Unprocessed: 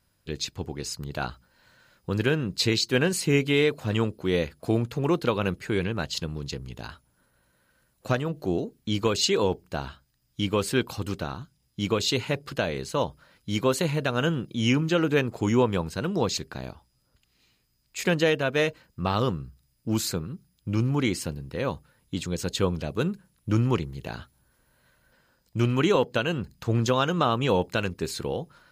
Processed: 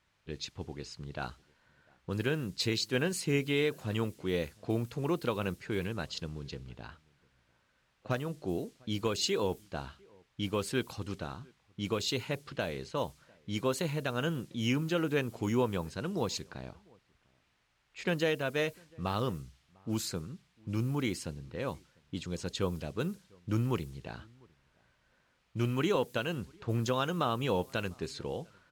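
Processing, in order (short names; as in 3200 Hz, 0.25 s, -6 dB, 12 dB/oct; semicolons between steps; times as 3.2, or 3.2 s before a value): added noise blue -50 dBFS; outdoor echo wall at 120 m, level -28 dB; low-pass opened by the level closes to 1900 Hz, open at -22 dBFS; gain -7.5 dB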